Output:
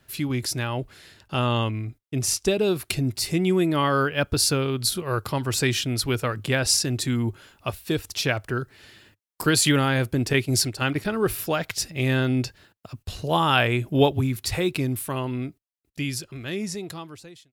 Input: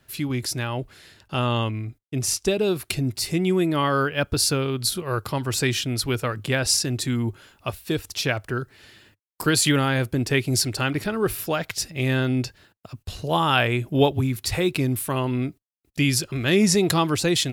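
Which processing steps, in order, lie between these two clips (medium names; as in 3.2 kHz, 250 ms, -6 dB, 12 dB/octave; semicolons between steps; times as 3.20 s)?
fade out at the end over 3.52 s; 10.33–11.05 s: gate -25 dBFS, range -7 dB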